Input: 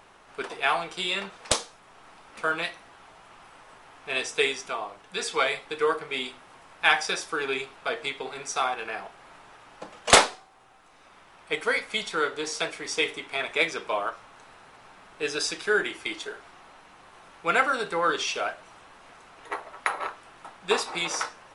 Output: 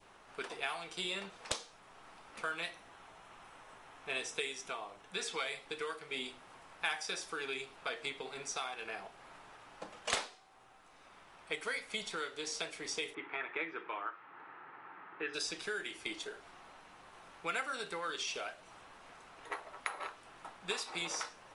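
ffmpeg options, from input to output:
-filter_complex "[0:a]asettb=1/sr,asplit=3[a][b][c];[a]atrim=end=2.554[d];[b]atrim=start=2.55:end=5.33,asetpts=PTS-STARTPTS,afade=t=in:d=0.004:c=qsin,afade=t=out:st=2.776:d=0.004:c=qsin,bandreject=f=4.7k:w=12[e];[c]atrim=start=5.326[f];[d][e]acrossfade=d=0.004:c1=hsin:c2=qsin[g];[g][f]acrossfade=d=0.004:c1=qsin:c2=hsin,asplit=3[h][i][j];[h]afade=t=out:st=13.13:d=0.02[k];[i]highpass=f=140:w=0.5412,highpass=f=140:w=1.3066,equalizer=f=220:t=q:w=4:g=-8,equalizer=f=330:t=q:w=4:g=8,equalizer=f=620:t=q:w=4:g=-6,equalizer=f=890:t=q:w=4:g=6,equalizer=f=1.3k:t=q:w=4:g=8,equalizer=f=1.8k:t=q:w=4:g=7,lowpass=f=2.6k:w=0.5412,lowpass=f=2.6k:w=1.3066,afade=t=in:st=13.13:d=0.02,afade=t=out:st=15.33:d=0.02[l];[j]afade=t=in:st=15.33:d=0.02[m];[k][l][m]amix=inputs=3:normalize=0,acrossover=split=1600|6700[n][o][p];[n]acompressor=threshold=-36dB:ratio=4[q];[o]acompressor=threshold=-32dB:ratio=4[r];[p]acompressor=threshold=-43dB:ratio=4[s];[q][r][s]amix=inputs=3:normalize=0,adynamicequalizer=threshold=0.00501:dfrequency=1400:dqfactor=0.83:tfrequency=1400:tqfactor=0.83:attack=5:release=100:ratio=0.375:range=2:mode=cutabove:tftype=bell,volume=-5dB"

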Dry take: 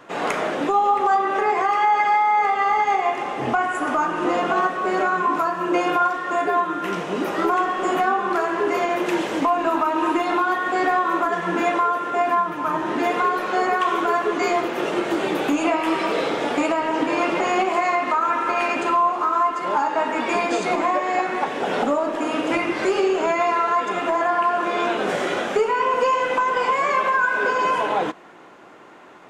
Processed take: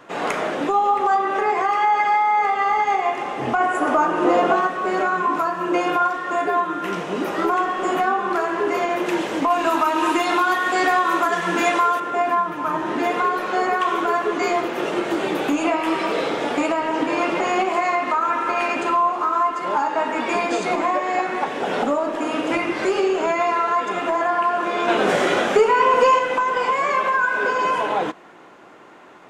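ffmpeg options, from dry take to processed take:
-filter_complex "[0:a]asettb=1/sr,asplit=3[a][b][c];[a]atrim=end=3.604[d];[b]atrim=start=3.6:end=4.56,asetpts=PTS-STARTPTS,afade=t=in:d=0.004:c=qsin,afade=t=out:st=0.956:d=0.004:c=qsin,equalizer=f=520:t=o:w=1.7:g=6.5[e];[c]atrim=start=4.556[f];[d][e]acrossfade=d=0.004:c1=hsin:c2=qsin[g];[g][f]acrossfade=d=0.004:c1=qsin:c2=hsin,asettb=1/sr,asplit=3[h][i][j];[h]atrim=end=9.504[k];[i]atrim=start=9.5:end=12,asetpts=PTS-STARTPTS,afade=t=in:d=0.004:c=qsin,afade=t=out:st=2.496:d=0.004:c=qsin,highshelf=f=2.4k:g=11[l];[j]atrim=start=11.996[m];[k][l]acrossfade=d=0.004:c1=hsin:c2=qsin[n];[n][m]acrossfade=d=0.004:c1=qsin:c2=hsin,asettb=1/sr,asplit=3[o][p][q];[o]atrim=end=24.884[r];[p]atrim=start=24.88:end=26.19,asetpts=PTS-STARTPTS,afade=t=in:d=0.004:c=qsin,afade=t=out:st=1.306:d=0.004:c=qsin,acontrast=20[s];[q]atrim=start=26.186[t];[r][s]acrossfade=d=0.004:c1=hsin:c2=qsin[u];[u][t]acrossfade=d=0.004:c1=qsin:c2=hsin"

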